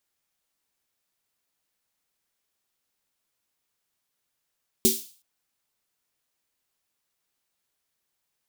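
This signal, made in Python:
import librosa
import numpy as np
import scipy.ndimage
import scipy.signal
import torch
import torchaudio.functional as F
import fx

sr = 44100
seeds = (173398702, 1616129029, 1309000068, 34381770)

y = fx.drum_snare(sr, seeds[0], length_s=0.37, hz=230.0, second_hz=380.0, noise_db=1.0, noise_from_hz=3400.0, decay_s=0.23, noise_decay_s=0.43)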